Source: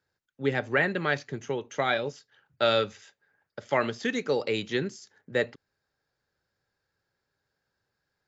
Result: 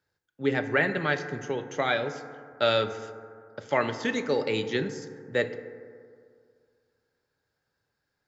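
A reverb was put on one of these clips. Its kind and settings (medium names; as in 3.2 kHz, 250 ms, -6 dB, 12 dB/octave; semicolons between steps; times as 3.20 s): FDN reverb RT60 2.2 s, low-frequency decay 0.95×, high-frequency decay 0.3×, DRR 8.5 dB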